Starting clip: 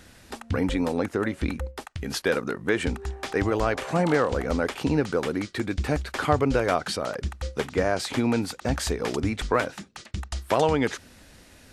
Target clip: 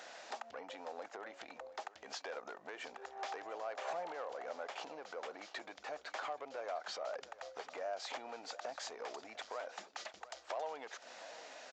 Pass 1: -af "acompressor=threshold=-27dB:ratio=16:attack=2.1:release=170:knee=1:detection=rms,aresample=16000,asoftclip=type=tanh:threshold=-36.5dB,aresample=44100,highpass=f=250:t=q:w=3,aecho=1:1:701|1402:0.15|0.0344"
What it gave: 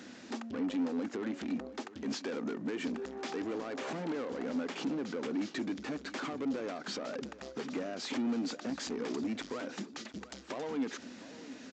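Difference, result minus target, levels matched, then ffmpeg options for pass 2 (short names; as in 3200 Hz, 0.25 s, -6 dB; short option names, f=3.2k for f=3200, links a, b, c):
250 Hz band +18.0 dB; compressor: peak gain reduction -8.5 dB
-af "acompressor=threshold=-36dB:ratio=16:attack=2.1:release=170:knee=1:detection=rms,aresample=16000,asoftclip=type=tanh:threshold=-36.5dB,aresample=44100,highpass=f=670:t=q:w=3,aecho=1:1:701|1402:0.15|0.0344"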